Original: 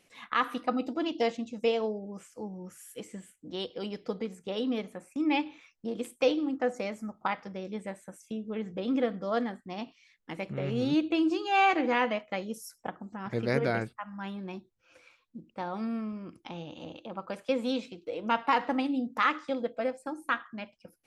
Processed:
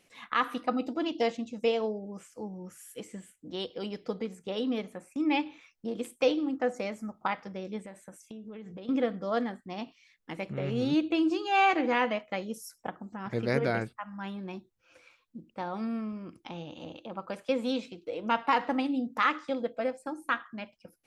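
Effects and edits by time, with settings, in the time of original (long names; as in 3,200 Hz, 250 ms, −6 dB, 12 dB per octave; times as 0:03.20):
0:07.80–0:08.89: downward compressor, threshold −40 dBFS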